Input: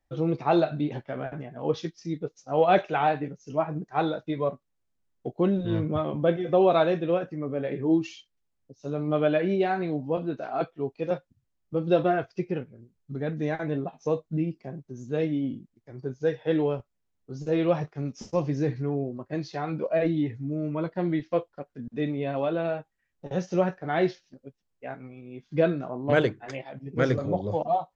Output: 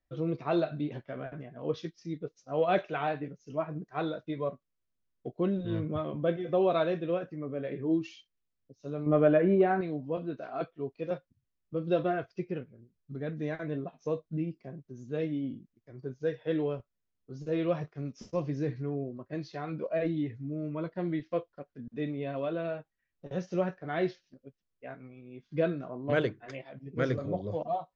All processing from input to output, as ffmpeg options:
-filter_complex "[0:a]asettb=1/sr,asplit=3[s0][s1][s2];[s0]atrim=end=9.064[s3];[s1]atrim=start=9.06:end=9.81,asetpts=PTS-STARTPTS,afade=t=in:d=0.004:c=qsin,afade=t=out:st=0.746:d=0.004:c=qsin,lowpass=1600,acontrast=73[s4];[s2]atrim=start=9.806[s5];[s3][s4]acrossfade=d=0.004:c1=hsin:c2=qsin[s6];[s6][s5]acrossfade=d=0.004:c1=qsin:c2=hsin,lowpass=5900,bandreject=f=830:w=5.3,volume=0.531"

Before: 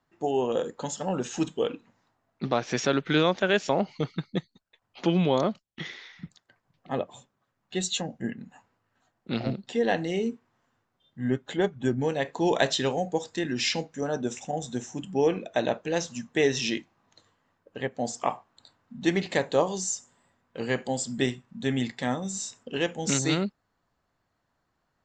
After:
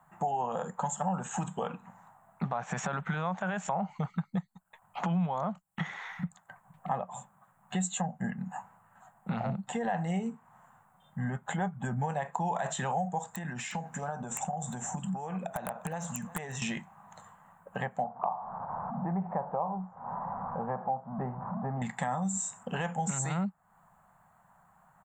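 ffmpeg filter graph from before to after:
-filter_complex "[0:a]asettb=1/sr,asplit=3[s0][s1][s2];[s0]atrim=end=13.304[s3];[s1]atrim=start=13.3:end=16.62,asetpts=PTS-STARTPTS,afade=t=in:d=0.004:c=qsin,afade=t=out:st=3.316:d=0.004:c=qsin,acompressor=threshold=0.0158:ratio=20:attack=3.2:release=140:knee=1:detection=peak,aeval=exprs='(mod(28.2*val(0)+1,2)-1)/28.2':c=same,aecho=1:1:356:0.0841,atrim=end_sample=146412[s4];[s2]atrim=start=16.616[s5];[s3][s4]acrossfade=d=0.004:c1=hsin:c2=qsin[s6];[s6][s5]acrossfade=d=0.004:c1=qsin:c2=hsin,asettb=1/sr,asplit=3[s7][s8][s9];[s7]atrim=end=18.044[s10];[s8]atrim=start=18.04:end=21.82,asetpts=PTS-STARTPTS,afade=t=in:d=0.004:c=qsin,afade=t=out:st=3.776:d=0.004:c=qsin,aeval=exprs='val(0)+0.5*0.015*sgn(val(0))':c=same,lowpass=f=1000:w=0.5412,lowpass=f=1000:w=1.3066,lowshelf=f=430:g=-8[s11];[s9]atrim=start=21.816[s12];[s10][s11]acrossfade=d=0.004:c1=hsin:c2=qsin[s13];[s13][s12]acrossfade=d=0.004:c1=qsin:c2=hsin,alimiter=limit=0.112:level=0:latency=1:release=26,firequalizer=gain_entry='entry(100,0);entry(180,12);entry(290,-14);entry(780,14);entry(2200,-1);entry(5000,-17);entry(7500,9)':delay=0.05:min_phase=1,acompressor=threshold=0.0112:ratio=3,volume=1.88"

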